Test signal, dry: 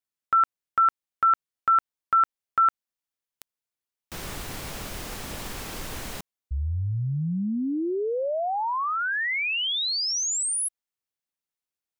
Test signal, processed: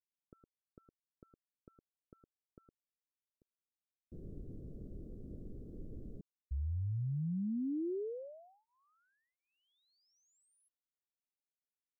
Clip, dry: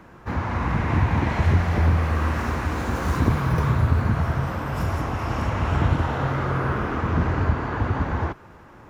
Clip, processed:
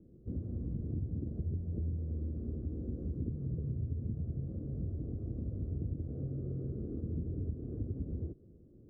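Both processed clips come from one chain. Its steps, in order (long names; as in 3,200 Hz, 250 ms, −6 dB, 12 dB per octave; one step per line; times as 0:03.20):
downward compressor, threshold −24 dBFS
inverse Chebyshev low-pass filter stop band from 850 Hz, stop band 40 dB
level −8.5 dB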